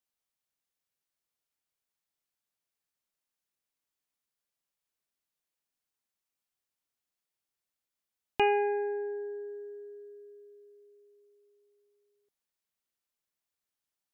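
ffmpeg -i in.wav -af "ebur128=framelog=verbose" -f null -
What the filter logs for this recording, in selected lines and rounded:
Integrated loudness:
  I:         -31.7 LUFS
  Threshold: -45.0 LUFS
Loudness range:
  LRA:        16.7 LU
  Threshold: -57.1 LUFS
  LRA low:   -51.1 LUFS
  LRA high:  -34.4 LUFS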